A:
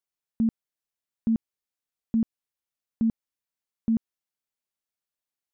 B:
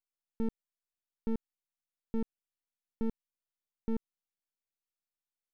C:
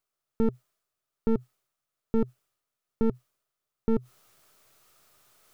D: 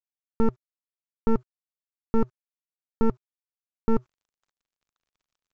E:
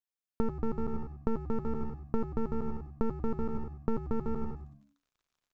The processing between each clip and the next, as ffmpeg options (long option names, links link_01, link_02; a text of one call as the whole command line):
ffmpeg -i in.wav -af "aeval=exprs='max(val(0),0)':channel_layout=same,volume=-5dB" out.wav
ffmpeg -i in.wav -af "equalizer=frequency=125:width_type=o:width=0.33:gain=10,equalizer=frequency=400:width_type=o:width=0.33:gain=7,equalizer=frequency=630:width_type=o:width=0.33:gain=8,equalizer=frequency=1250:width_type=o:width=0.33:gain=10,areverse,acompressor=mode=upward:threshold=-49dB:ratio=2.5,areverse,volume=7dB" out.wav
ffmpeg -i in.wav -af "equalizer=frequency=1100:width_type=o:width=0.82:gain=14.5,aresample=16000,aeval=exprs='sgn(val(0))*max(abs(val(0))-0.00266,0)':channel_layout=same,aresample=44100,lowshelf=frequency=72:gain=7" out.wav
ffmpeg -i in.wav -filter_complex "[0:a]asplit=2[link_01][link_02];[link_02]aecho=0:1:230|379.5|476.7|539.8|580.9:0.631|0.398|0.251|0.158|0.1[link_03];[link_01][link_03]amix=inputs=2:normalize=0,acompressor=threshold=-22dB:ratio=6,asplit=2[link_04][link_05];[link_05]asplit=4[link_06][link_07][link_08][link_09];[link_06]adelay=94,afreqshift=-71,volume=-11dB[link_10];[link_07]adelay=188,afreqshift=-142,volume=-20.1dB[link_11];[link_08]adelay=282,afreqshift=-213,volume=-29.2dB[link_12];[link_09]adelay=376,afreqshift=-284,volume=-38.4dB[link_13];[link_10][link_11][link_12][link_13]amix=inputs=4:normalize=0[link_14];[link_04][link_14]amix=inputs=2:normalize=0,volume=-3dB" out.wav